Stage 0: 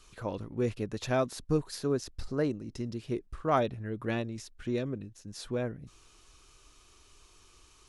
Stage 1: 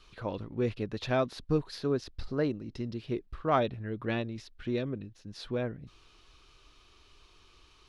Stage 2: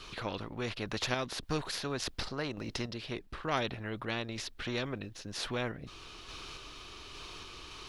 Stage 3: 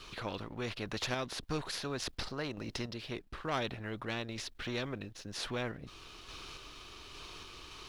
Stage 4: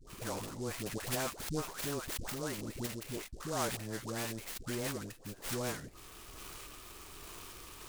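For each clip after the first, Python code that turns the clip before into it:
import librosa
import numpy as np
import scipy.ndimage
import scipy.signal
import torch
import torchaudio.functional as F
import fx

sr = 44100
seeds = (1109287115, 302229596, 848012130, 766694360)

y1 = fx.high_shelf_res(x, sr, hz=5600.0, db=-11.0, q=1.5)
y2 = fx.tremolo_random(y1, sr, seeds[0], hz=3.5, depth_pct=55)
y2 = fx.spectral_comp(y2, sr, ratio=2.0)
y3 = fx.leveller(y2, sr, passes=1)
y3 = y3 * librosa.db_to_amplitude(-5.5)
y4 = fx.dispersion(y3, sr, late='highs', ms=100.0, hz=780.0)
y4 = fx.noise_mod_delay(y4, sr, seeds[1], noise_hz=6000.0, depth_ms=0.075)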